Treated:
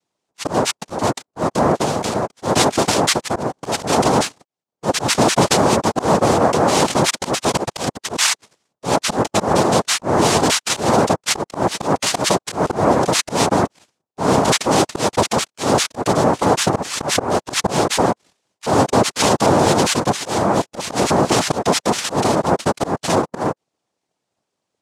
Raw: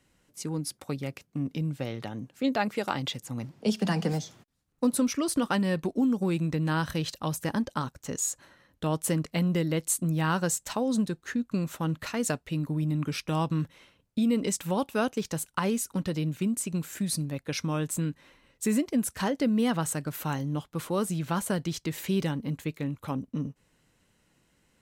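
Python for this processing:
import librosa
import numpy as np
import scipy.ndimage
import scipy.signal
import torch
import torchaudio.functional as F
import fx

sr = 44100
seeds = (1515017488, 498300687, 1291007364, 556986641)

y = fx.leveller(x, sr, passes=5)
y = fx.noise_vocoder(y, sr, seeds[0], bands=2)
y = fx.auto_swell(y, sr, attack_ms=119.0)
y = fx.hpss(y, sr, part='percussive', gain_db=3)
y = F.gain(torch.from_numpy(y), -1.0).numpy()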